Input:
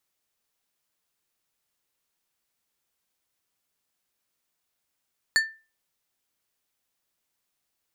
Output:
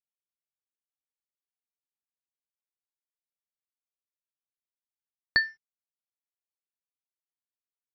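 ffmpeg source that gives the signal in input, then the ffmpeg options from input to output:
-f lavfi -i "aevalsrc='0.178*pow(10,-3*t/0.32)*sin(2*PI*1780*t)+0.1*pow(10,-3*t/0.168)*sin(2*PI*4450*t)+0.0562*pow(10,-3*t/0.121)*sin(2*PI*7120*t)+0.0316*pow(10,-3*t/0.104)*sin(2*PI*8900*t)+0.0178*pow(10,-3*t/0.086)*sin(2*PI*11570*t)':d=0.89:s=44100"
-af "aresample=11025,aeval=exprs='sgn(val(0))*max(abs(val(0))-0.00168,0)':c=same,aresample=44100,lowshelf=f=420:g=11"

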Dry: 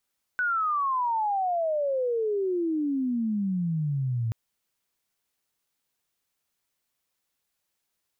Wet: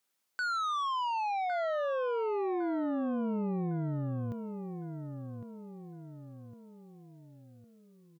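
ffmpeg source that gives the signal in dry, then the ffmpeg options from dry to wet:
-f lavfi -i "aevalsrc='pow(10,(-23-1.5*t/3.93)/20)*sin(2*PI*1500*3.93/log(110/1500)*(exp(log(110/1500)*t/3.93)-1))':d=3.93:s=44100"
-filter_complex "[0:a]highpass=170,asoftclip=type=tanh:threshold=-30.5dB,asplit=2[a][b];[b]adelay=1107,lowpass=f=1.7k:p=1,volume=-7.5dB,asplit=2[c][d];[d]adelay=1107,lowpass=f=1.7k:p=1,volume=0.47,asplit=2[e][f];[f]adelay=1107,lowpass=f=1.7k:p=1,volume=0.47,asplit=2[g][h];[h]adelay=1107,lowpass=f=1.7k:p=1,volume=0.47,asplit=2[i][j];[j]adelay=1107,lowpass=f=1.7k:p=1,volume=0.47[k];[c][e][g][i][k]amix=inputs=5:normalize=0[l];[a][l]amix=inputs=2:normalize=0"

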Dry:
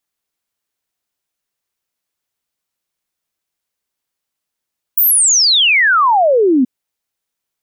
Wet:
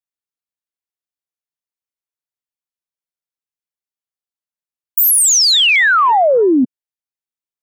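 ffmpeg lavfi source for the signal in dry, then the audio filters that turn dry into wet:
-f lavfi -i "aevalsrc='0.398*clip(min(t,1.68-t)/0.01,0,1)*sin(2*PI*16000*1.68/log(240/16000)*(exp(log(240/16000)*t/1.68)-1))':d=1.68:s=44100"
-af "afwtdn=0.0631"

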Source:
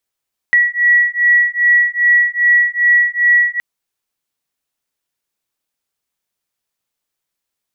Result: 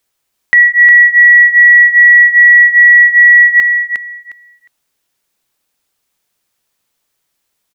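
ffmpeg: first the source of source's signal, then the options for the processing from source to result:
-f lavfi -i "aevalsrc='0.237*(sin(2*PI*1930*t)+sin(2*PI*1932.5*t))':d=3.07:s=44100"
-filter_complex "[0:a]acompressor=threshold=-13dB:ratio=6,asplit=2[a][b];[b]aecho=0:1:358|716|1074:0.398|0.0717|0.0129[c];[a][c]amix=inputs=2:normalize=0,alimiter=level_in=10.5dB:limit=-1dB:release=50:level=0:latency=1"

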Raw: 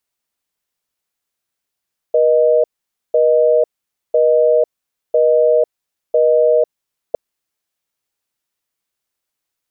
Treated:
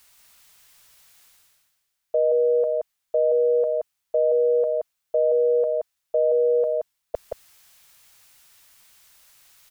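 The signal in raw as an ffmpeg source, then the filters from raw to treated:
-f lavfi -i "aevalsrc='0.251*(sin(2*PI*480*t)+sin(2*PI*620*t))*clip(min(mod(t,1),0.5-mod(t,1))/0.005,0,1)':d=5.01:s=44100"
-af "equalizer=f=320:w=0.67:g=-12,areverse,acompressor=mode=upward:threshold=-37dB:ratio=2.5,areverse,aecho=1:1:175:0.631"

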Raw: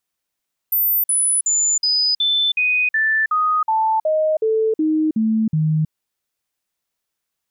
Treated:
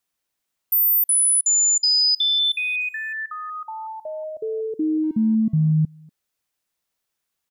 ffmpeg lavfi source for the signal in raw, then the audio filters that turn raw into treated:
-f lavfi -i "aevalsrc='0.188*clip(min(mod(t,0.37),0.32-mod(t,0.37))/0.005,0,1)*sin(2*PI*14100*pow(2,-floor(t/0.37)/2)*mod(t,0.37))':d=5.18:s=44100"
-filter_complex "[0:a]acrossover=split=320|3000[a][b][c];[b]acompressor=threshold=-33dB:ratio=10[d];[a][d][c]amix=inputs=3:normalize=0,asplit=2[e][f];[f]adelay=240,highpass=300,lowpass=3.4k,asoftclip=type=hard:threshold=-23.5dB,volume=-16dB[g];[e][g]amix=inputs=2:normalize=0"

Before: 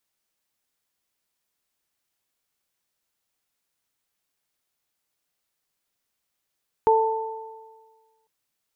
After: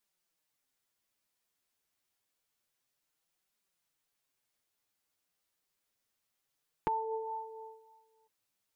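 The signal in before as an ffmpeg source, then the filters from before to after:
-f lavfi -i "aevalsrc='0.158*pow(10,-3*t/1.48)*sin(2*PI*444*t)+0.168*pow(10,-3*t/1.5)*sin(2*PI*888*t)':d=1.4:s=44100"
-af "acompressor=threshold=-29dB:ratio=4,flanger=delay=4.8:depth=6.8:regen=13:speed=0.28:shape=triangular"

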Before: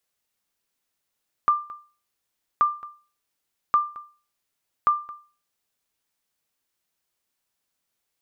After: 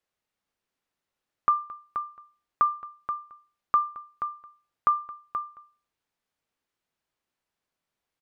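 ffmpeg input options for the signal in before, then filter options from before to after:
-f lavfi -i "aevalsrc='0.266*(sin(2*PI*1190*mod(t,1.13))*exp(-6.91*mod(t,1.13)/0.37)+0.1*sin(2*PI*1190*max(mod(t,1.13)-0.22,0))*exp(-6.91*max(mod(t,1.13)-0.22,0)/0.37))':d=4.52:s=44100"
-filter_complex "[0:a]lowpass=f=2.2k:p=1,asplit=2[a][b];[b]aecho=0:1:479:0.355[c];[a][c]amix=inputs=2:normalize=0"

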